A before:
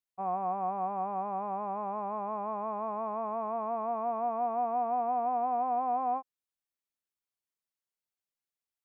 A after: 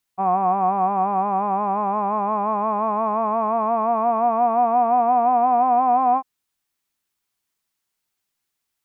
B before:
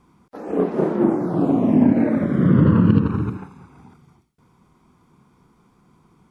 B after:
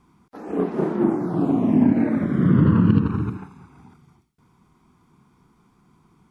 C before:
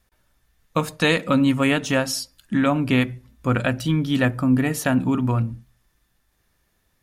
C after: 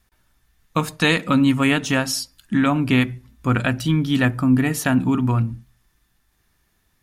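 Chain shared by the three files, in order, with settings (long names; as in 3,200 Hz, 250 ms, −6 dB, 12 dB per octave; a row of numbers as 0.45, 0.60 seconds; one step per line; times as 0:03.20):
parametric band 540 Hz −7 dB 0.48 octaves
loudness normalisation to −20 LKFS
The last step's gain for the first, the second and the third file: +14.0, −1.5, +2.0 decibels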